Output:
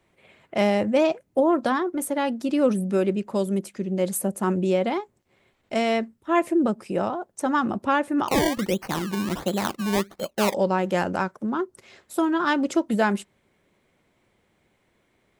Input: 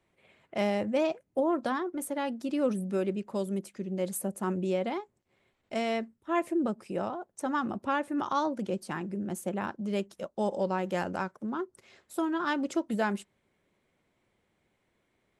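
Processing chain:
0:08.28–0:10.54: sample-and-hold swept by an LFO 23×, swing 100% 1.4 Hz
level +7.5 dB

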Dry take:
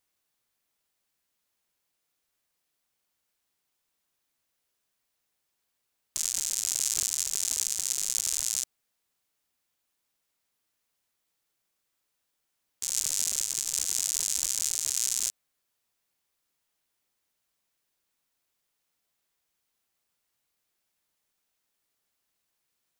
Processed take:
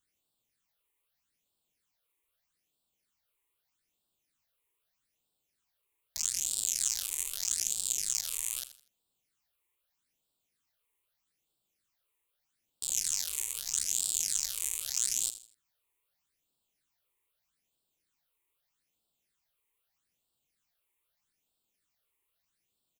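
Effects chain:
all-pass phaser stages 8, 0.8 Hz, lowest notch 190–2,000 Hz
repeating echo 81 ms, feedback 31%, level −13.5 dB

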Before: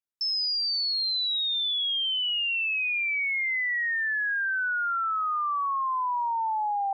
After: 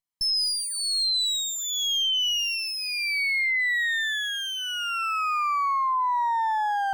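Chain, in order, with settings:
lower of the sound and its delayed copy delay 0.97 ms
level +3.5 dB

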